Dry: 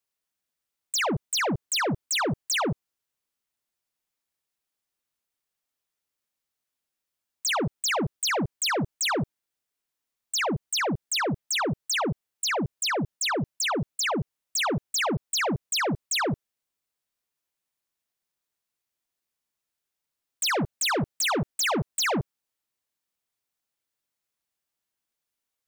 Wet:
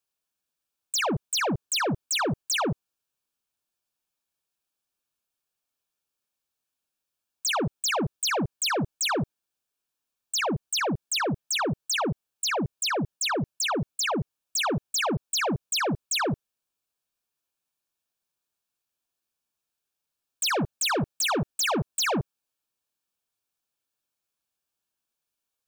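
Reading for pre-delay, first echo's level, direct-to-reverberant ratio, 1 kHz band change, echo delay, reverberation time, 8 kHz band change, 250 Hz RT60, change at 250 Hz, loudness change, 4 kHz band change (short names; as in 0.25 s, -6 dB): none, none, none, 0.0 dB, none, none, 0.0 dB, none, 0.0 dB, -0.5 dB, 0.0 dB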